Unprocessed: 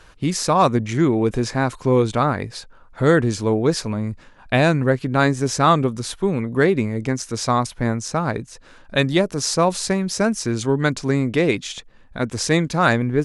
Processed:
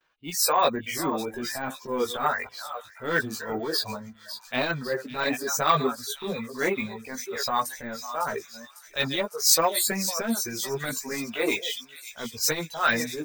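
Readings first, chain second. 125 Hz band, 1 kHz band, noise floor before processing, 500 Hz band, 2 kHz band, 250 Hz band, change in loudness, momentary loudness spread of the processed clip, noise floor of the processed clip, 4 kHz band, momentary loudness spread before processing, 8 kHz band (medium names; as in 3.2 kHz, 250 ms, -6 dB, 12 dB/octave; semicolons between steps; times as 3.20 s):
-18.5 dB, -5.5 dB, -48 dBFS, -9.5 dB, -4.5 dB, -12.5 dB, -6.5 dB, 13 LU, -52 dBFS, -0.5 dB, 9 LU, +0.5 dB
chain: chunks repeated in reverse 412 ms, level -10 dB; gate with hold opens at -38 dBFS; RIAA curve recording; spectral noise reduction 17 dB; level-controlled noise filter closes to 2.9 kHz, open at -18.5 dBFS; reverb removal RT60 1.2 s; bass shelf 71 Hz -9 dB; transient shaper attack -11 dB, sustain +4 dB; chorus voices 6, 0.37 Hz, delay 16 ms, depth 3.7 ms; on a send: feedback echo behind a high-pass 552 ms, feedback 62%, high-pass 3.4 kHz, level -10 dB; on the sum: careless resampling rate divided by 2×, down none, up hold; transformer saturation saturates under 790 Hz; trim +1.5 dB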